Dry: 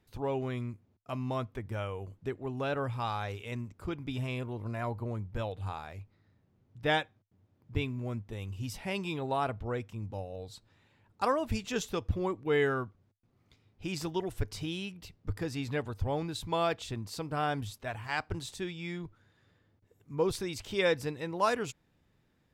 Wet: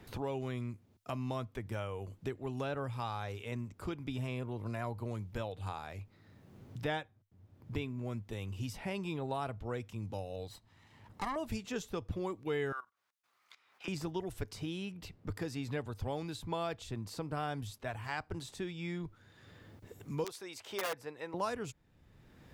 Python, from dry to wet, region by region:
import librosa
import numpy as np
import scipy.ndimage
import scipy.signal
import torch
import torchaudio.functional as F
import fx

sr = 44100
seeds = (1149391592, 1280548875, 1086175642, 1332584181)

y = fx.chain(x, sr, fx.lower_of_two(delay_ms=0.99),
    fx.tube_stage(drive_db=26.0, bias=0.7), at=(10.47, 11.36))
y = fx.chain(y, sr, fx.highpass_res(hz=1200.0, q=1.7),
    fx.level_steps(step_db=17), at=(12.72, 13.88))
y = fx.chain(y, sr, fx.overflow_wrap(gain_db=20.5),
    fx.highpass(hz=530.0, slope=12), at=(20.24, 21.34))
y = fx.dynamic_eq(y, sr, hz=2800.0, q=0.78, threshold_db=-46.0, ratio=4.0, max_db=-3)
y = fx.band_squash(y, sr, depth_pct=70)
y = y * 10.0 ** (-4.0 / 20.0)